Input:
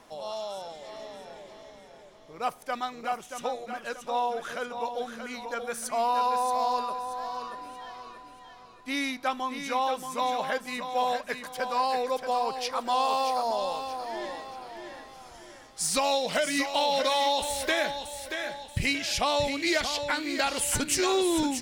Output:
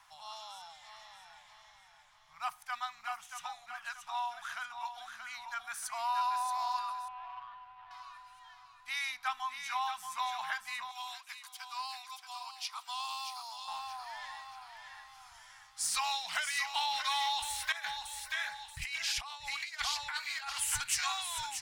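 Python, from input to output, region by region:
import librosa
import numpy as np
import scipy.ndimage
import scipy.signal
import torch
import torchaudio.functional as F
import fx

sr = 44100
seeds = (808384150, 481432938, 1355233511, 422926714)

y = fx.chain(x, sr, fx.median_filter(points=25),
    fx.air_absorb(metres=360.0), at=(7.08, 7.91))
y = fx.chain(y, sr, fx.highpass(hz=1300.0, slope=12),
    fx.peak_eq(hz=1700.0, db=-12.5, octaves=0.6), at=(10.91, 13.68))
y = fx.chain(y, sr, fx.peak_eq(hz=96.0, db=-11.5, octaves=0.22),
    fx.over_compress(threshold_db=-30.0, ratio=-0.5),
    fx.filter_lfo_notch(shape='sine', hz=4.1, low_hz=260.0, high_hz=3400.0, q=2.5), at=(17.72, 20.52))
y = scipy.signal.sosfilt(scipy.signal.cheby1(2, 1.0, [100.0, 1300.0], 'bandstop', fs=sr, output='sos'), y)
y = fx.low_shelf_res(y, sr, hz=620.0, db=-7.5, q=3.0)
y = y * librosa.db_to_amplitude(-4.0)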